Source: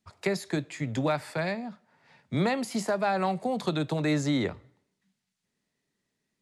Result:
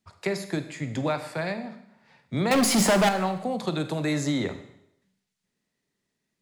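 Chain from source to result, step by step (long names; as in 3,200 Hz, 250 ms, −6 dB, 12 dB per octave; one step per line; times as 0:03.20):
0:02.51–0:03.09: leveller curve on the samples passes 5
0:03.77–0:04.33: high-shelf EQ 10,000 Hz +11.5 dB
four-comb reverb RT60 0.77 s, combs from 32 ms, DRR 9.5 dB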